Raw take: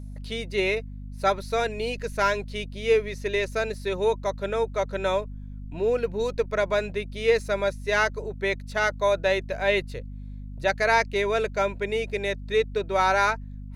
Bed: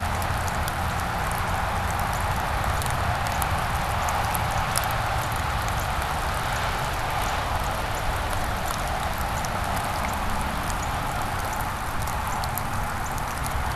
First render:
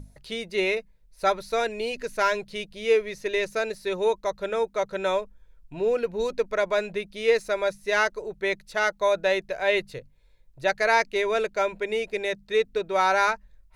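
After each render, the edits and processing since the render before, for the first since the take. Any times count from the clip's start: notches 50/100/150/200/250 Hz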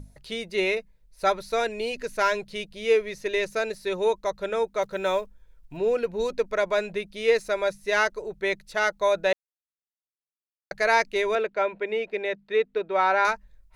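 4.82–5.79 block floating point 7-bit; 9.33–10.71 mute; 11.35–13.25 three-band isolator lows -18 dB, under 170 Hz, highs -19 dB, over 3600 Hz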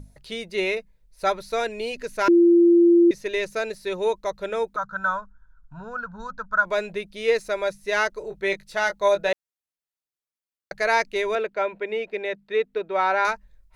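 2.28–3.11 bleep 343 Hz -11.5 dBFS; 4.76–6.65 EQ curve 200 Hz 0 dB, 360 Hz -25 dB, 1500 Hz +14 dB, 2100 Hz -25 dB, 4000 Hz -13 dB, 6900 Hz -10 dB, 11000 Hz -30 dB; 8.19–9.29 doubler 20 ms -6 dB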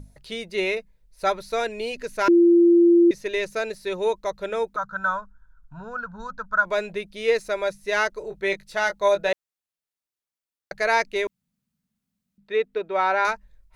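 11.27–12.38 room tone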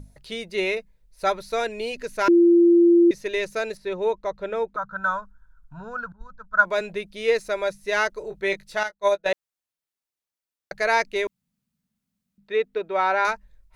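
3.77–5.04 LPF 2100 Hz 6 dB/oct; 6.12–6.81 three-band expander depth 100%; 8.83–9.26 upward expander 2.5:1, over -34 dBFS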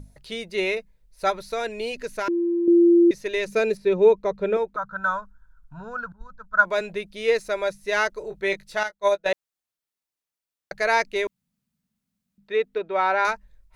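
1.3–2.68 compressor, threshold -22 dBFS; 3.47–4.57 small resonant body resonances 200/410/2400 Hz, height 10 dB, ringing for 35 ms; 12.78–13.19 LPF 5700 Hz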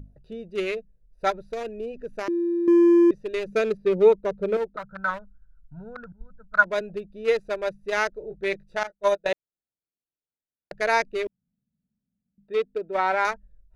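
Wiener smoothing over 41 samples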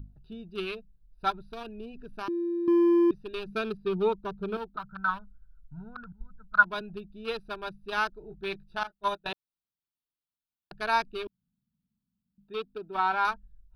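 fixed phaser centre 2000 Hz, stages 6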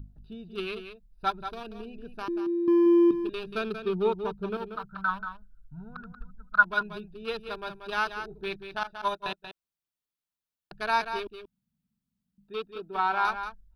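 echo 0.184 s -9 dB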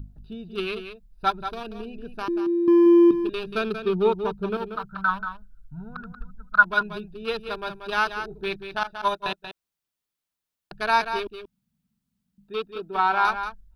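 gain +5 dB; limiter -3 dBFS, peak gain reduction 1.5 dB

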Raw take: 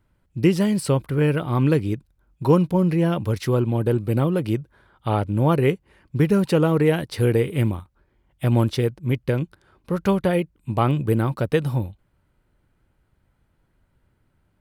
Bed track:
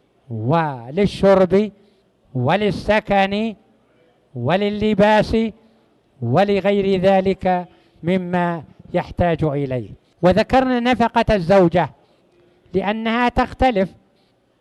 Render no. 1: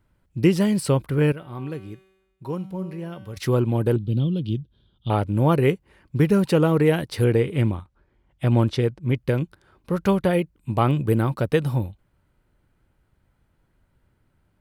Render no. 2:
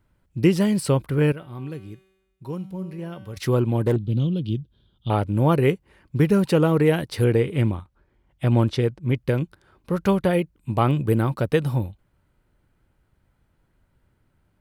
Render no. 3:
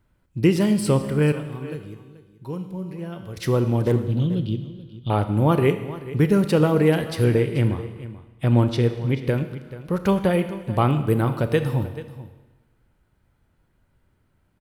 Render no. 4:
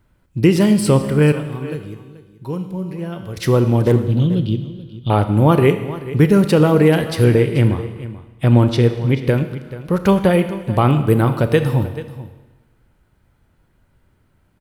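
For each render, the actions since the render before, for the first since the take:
1.32–3.37 resonator 190 Hz, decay 1.1 s, mix 80%; 3.96–5.1 EQ curve 200 Hz 0 dB, 850 Hz -20 dB, 2100 Hz -23 dB, 3300 Hz +5 dB, 4800 Hz -7 dB, 8100 Hz -20 dB; 7.24–9.16 air absorption 50 m
1.45–2.99 bell 890 Hz -5 dB 2.9 oct; 3.79–4.34 self-modulated delay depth 0.13 ms
echo 0.434 s -16 dB; Schroeder reverb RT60 1.2 s, combs from 26 ms, DRR 9.5 dB
gain +6 dB; limiter -3 dBFS, peak gain reduction 3 dB

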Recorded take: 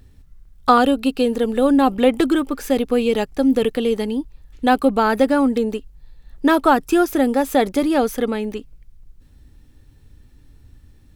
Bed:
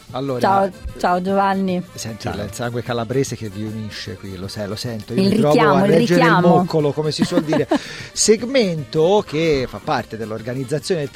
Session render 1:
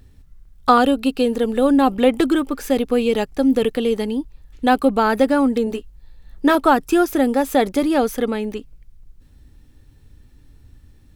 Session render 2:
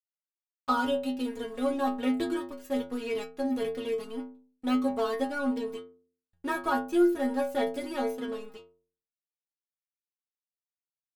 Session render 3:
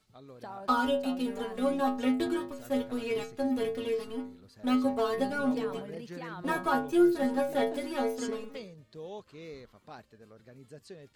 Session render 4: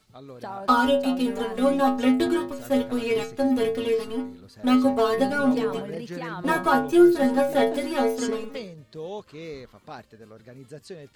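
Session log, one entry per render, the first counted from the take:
5.65–6.55 doubler 17 ms -7 dB
crossover distortion -31.5 dBFS; metallic resonator 82 Hz, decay 0.59 s, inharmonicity 0.008
add bed -28 dB
gain +7.5 dB

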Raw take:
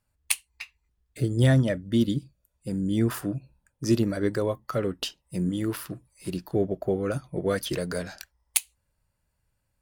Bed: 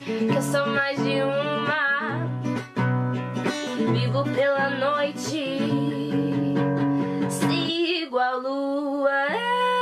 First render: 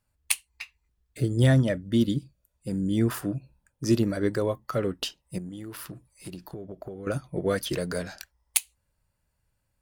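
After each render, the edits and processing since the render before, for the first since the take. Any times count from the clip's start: 5.38–7.07 compressor 12:1, threshold -34 dBFS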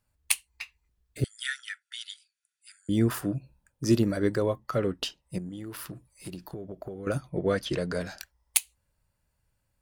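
1.24–2.89 brick-wall FIR band-pass 1300–11000 Hz; 4.35–5.67 high shelf 8900 Hz -7 dB; 7.29–8.01 air absorption 65 m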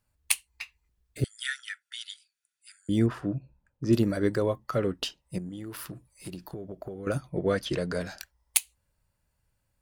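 3.06–3.93 tape spacing loss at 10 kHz 23 dB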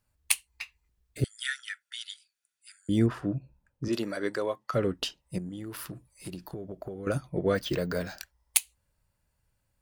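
3.88–4.74 weighting filter A; 7.55–8.19 careless resampling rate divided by 2×, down filtered, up hold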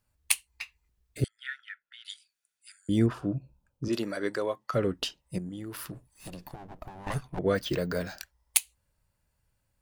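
1.28–2.05 air absorption 500 m; 3.13–3.9 bell 1900 Hz -13 dB 0.37 oct; 5.94–7.39 minimum comb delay 1.1 ms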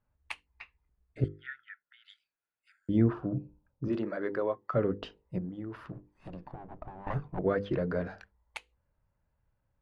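LPF 1500 Hz 12 dB/oct; notches 50/100/150/200/250/300/350/400/450/500 Hz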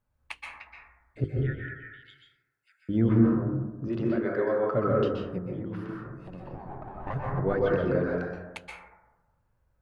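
plate-style reverb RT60 1.1 s, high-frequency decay 0.25×, pre-delay 0.115 s, DRR -3 dB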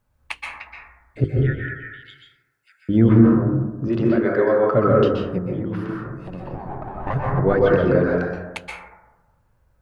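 gain +9 dB; limiter -3 dBFS, peak gain reduction 2 dB

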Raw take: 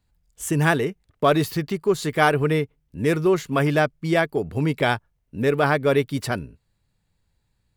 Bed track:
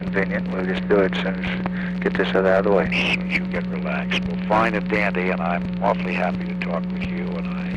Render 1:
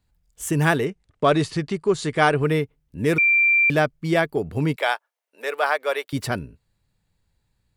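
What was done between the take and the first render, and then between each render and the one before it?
0.86–2.43 steep low-pass 9900 Hz 72 dB/oct; 3.18–3.7 bleep 2360 Hz -14 dBFS; 4.76–6.13 HPF 550 Hz 24 dB/oct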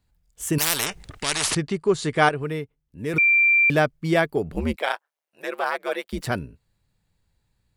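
0.58–1.55 spectral compressor 10:1; 2.29–3.14 gain -7.5 dB; 4.52–6.27 ring modulator 76 Hz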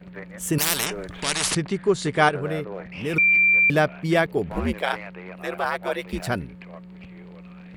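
add bed track -17 dB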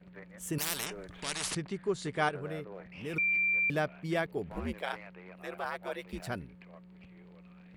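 gain -11.5 dB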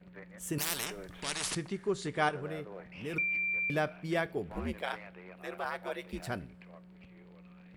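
two-slope reverb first 0.33 s, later 2.4 s, from -21 dB, DRR 15 dB

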